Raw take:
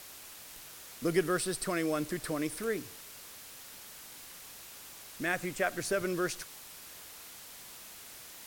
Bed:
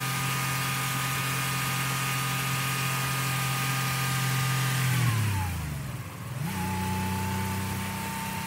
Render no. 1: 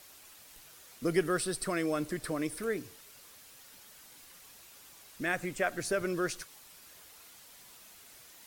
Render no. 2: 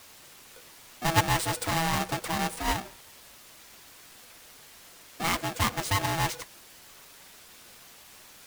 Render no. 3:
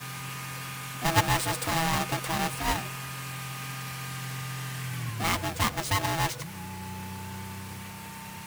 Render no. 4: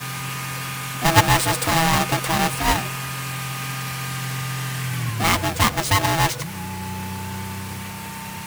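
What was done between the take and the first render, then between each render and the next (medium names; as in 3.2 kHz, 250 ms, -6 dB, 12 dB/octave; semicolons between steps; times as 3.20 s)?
noise reduction 7 dB, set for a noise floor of -50 dBFS
square wave that keeps the level; polarity switched at an audio rate 490 Hz
add bed -9 dB
trim +8.5 dB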